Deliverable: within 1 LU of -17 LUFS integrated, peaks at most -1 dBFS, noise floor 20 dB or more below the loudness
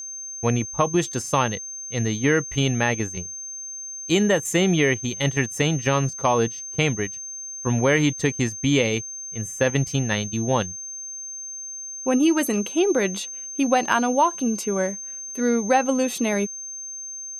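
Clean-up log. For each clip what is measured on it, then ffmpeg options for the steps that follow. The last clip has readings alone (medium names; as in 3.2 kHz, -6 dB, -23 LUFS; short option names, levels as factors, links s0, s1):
steady tone 6.3 kHz; tone level -32 dBFS; loudness -23.0 LUFS; peak level -5.5 dBFS; loudness target -17.0 LUFS
-> -af "bandreject=f=6300:w=30"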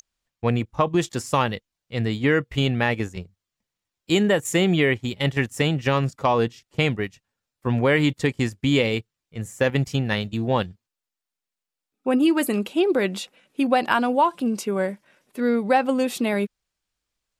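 steady tone not found; loudness -23.0 LUFS; peak level -5.5 dBFS; loudness target -17.0 LUFS
-> -af "volume=2,alimiter=limit=0.891:level=0:latency=1"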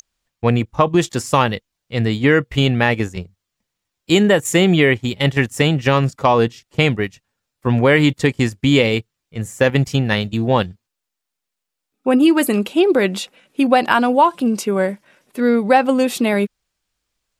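loudness -17.0 LUFS; peak level -1.0 dBFS; noise floor -81 dBFS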